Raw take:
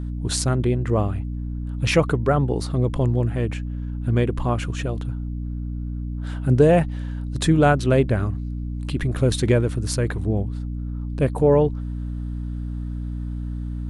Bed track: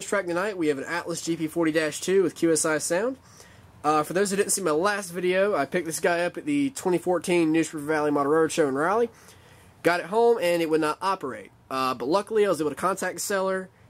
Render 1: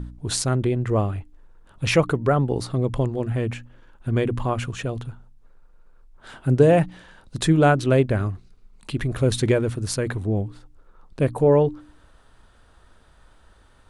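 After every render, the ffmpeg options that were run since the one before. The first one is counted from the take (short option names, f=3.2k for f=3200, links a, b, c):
-af "bandreject=f=60:t=h:w=4,bandreject=f=120:t=h:w=4,bandreject=f=180:t=h:w=4,bandreject=f=240:t=h:w=4,bandreject=f=300:t=h:w=4"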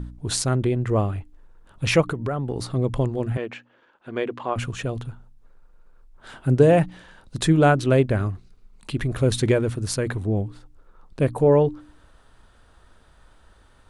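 -filter_complex "[0:a]asplit=3[a][b][c];[a]afade=t=out:st=2.01:d=0.02[d];[b]acompressor=threshold=-22dB:ratio=6:attack=3.2:release=140:knee=1:detection=peak,afade=t=in:st=2.01:d=0.02,afade=t=out:st=2.74:d=0.02[e];[c]afade=t=in:st=2.74:d=0.02[f];[d][e][f]amix=inputs=3:normalize=0,asettb=1/sr,asplit=3[g][h][i];[g]atrim=end=3.374[j];[h]atrim=start=3.37:end=4.56,asetpts=PTS-STARTPTS,afade=t=in:d=0.004:c=qsin,afade=t=out:st=1.186:d=0.004:c=qsin,highpass=370,lowpass=4.2k[k];[i]atrim=start=4.556[l];[j][k]acrossfade=d=0.004:c1=hsin:c2=qsin[m];[m][l]acrossfade=d=0.004:c1=qsin:c2=hsin"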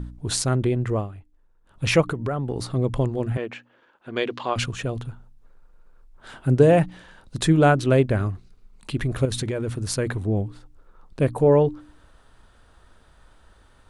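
-filter_complex "[0:a]asettb=1/sr,asplit=3[a][b][c];[a]atrim=end=4.164[d];[b]atrim=start=4.16:end=4.66,asetpts=PTS-STARTPTS,afade=t=in:d=0.004:c=qsin,afade=t=out:st=0.496:d=0.004:c=qsin,equalizer=f=4.5k:t=o:w=1.5:g=13[e];[c]atrim=start=4.656[f];[d][e]acrossfade=d=0.004:c1=hsin:c2=qsin[g];[g][f]acrossfade=d=0.004:c1=qsin:c2=hsin,asettb=1/sr,asplit=3[h][i][j];[h]atrim=end=9.254[k];[i]atrim=start=9.25:end=9.89,asetpts=PTS-STARTPTS,afade=t=in:d=0.004:c=qsin,afade=t=out:st=0.636:d=0.004:c=qsin,acompressor=threshold=-22dB:ratio=12:attack=3.2:release=140:knee=1:detection=peak[l];[j]atrim=start=9.886[m];[k][l]acrossfade=d=0.004:c1=hsin:c2=qsin[n];[n][m]acrossfade=d=0.004:c1=qsin:c2=hsin,asplit=3[o][p][q];[o]atrim=end=1.09,asetpts=PTS-STARTPTS,afade=t=out:st=0.86:d=0.23:silence=0.266073[r];[p]atrim=start=1.09:end=1.62,asetpts=PTS-STARTPTS,volume=-11.5dB[s];[q]atrim=start=1.62,asetpts=PTS-STARTPTS,afade=t=in:d=0.23:silence=0.266073[t];[r][s][t]concat=n=3:v=0:a=1"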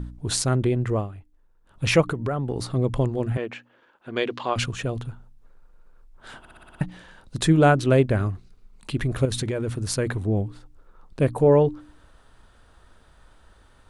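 -filter_complex "[0:a]asplit=8[a][b][c][d][e][f][g][h];[a]atrim=end=6.452[i];[b]atrim=start=6.388:end=6.452[j];[c]atrim=start=6.388:end=6.452[k];[d]atrim=start=6.388:end=6.452[l];[e]atrim=start=6.388:end=6.452[m];[f]atrim=start=6.388:end=6.452[n];[g]atrim=start=6.388:end=6.452[o];[h]atrim=start=6.808[p];[i][j]acrossfade=d=0.004:c1=hsin:c2=hsin[q];[q][k]acrossfade=d=0.004:c1=hsin:c2=hsin[r];[r][l]acrossfade=d=0.004:c1=hsin:c2=hsin[s];[s][m]acrossfade=d=0.004:c1=hsin:c2=hsin[t];[t][n]acrossfade=d=0.004:c1=hsin:c2=hsin[u];[u][o]acrossfade=d=0.004:c1=hsin:c2=hsin[v];[v][p]acrossfade=d=0.004:c1=hsin:c2=hsin"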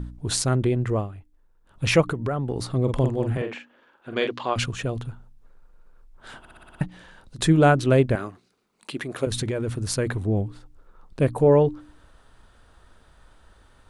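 -filter_complex "[0:a]asettb=1/sr,asplit=3[a][b][c];[a]atrim=end=2.834[d];[b]atrim=start=2.83:end=4.27,asetpts=PTS-STARTPTS,afade=t=in:d=0.004:c=qsin,afade=t=out:st=1.436:d=0.004:c=qsin,asplit=2[e][f];[f]adelay=46,volume=-6dB[g];[e][g]amix=inputs=2:normalize=0,atrim=end_sample=63504[h];[c]atrim=start=4.266[i];[d][h]acrossfade=d=0.004:c1=hsin:c2=qsin[j];[j][i]acrossfade=d=0.004:c1=qsin:c2=hsin,asettb=1/sr,asplit=3[k][l][m];[k]atrim=end=6.874[n];[l]atrim=start=6.87:end=7.39,asetpts=PTS-STARTPTS,afade=t=in:d=0.004:c=qsin,afade=t=out:st=0.516:d=0.004:c=qsin,acompressor=threshold=-43dB:ratio=2:attack=3.2:release=140:knee=1:detection=peak[o];[m]atrim=start=7.386[p];[n][o]acrossfade=d=0.004:c1=hsin:c2=qsin[q];[q][p]acrossfade=d=0.004:c1=qsin:c2=hsin,asettb=1/sr,asplit=3[r][s][t];[r]atrim=end=8.154[u];[s]atrim=start=8.15:end=9.27,asetpts=PTS-STARTPTS,afade=t=in:d=0.004:c=qsin,afade=t=out:st=1.116:d=0.004:c=qsin,highpass=290[v];[t]atrim=start=9.266[w];[u][v]acrossfade=d=0.004:c1=hsin:c2=qsin[x];[x][w]acrossfade=d=0.004:c1=qsin:c2=hsin"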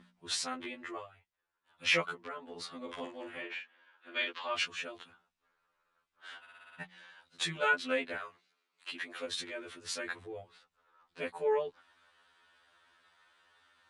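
-af "bandpass=f=2.5k:t=q:w=0.89:csg=0,afftfilt=real='re*2*eq(mod(b,4),0)':imag='im*2*eq(mod(b,4),0)':win_size=2048:overlap=0.75"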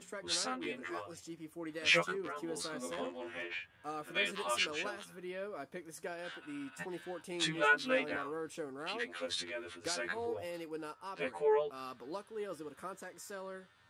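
-filter_complex "[1:a]volume=-20dB[a];[0:a][a]amix=inputs=2:normalize=0"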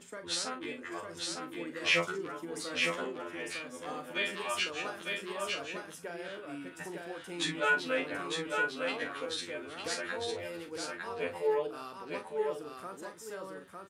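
-filter_complex "[0:a]asplit=2[a][b];[b]adelay=41,volume=-9dB[c];[a][c]amix=inputs=2:normalize=0,asplit=2[d][e];[e]aecho=0:1:904:0.668[f];[d][f]amix=inputs=2:normalize=0"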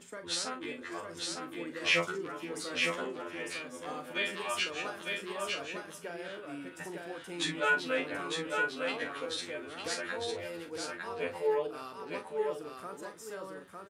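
-filter_complex "[0:a]asplit=2[a][b];[b]adelay=530.6,volume=-19dB,highshelf=f=4k:g=-11.9[c];[a][c]amix=inputs=2:normalize=0"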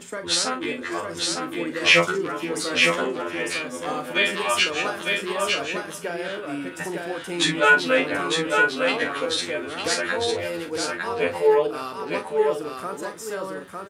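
-af "volume=12dB,alimiter=limit=-3dB:level=0:latency=1"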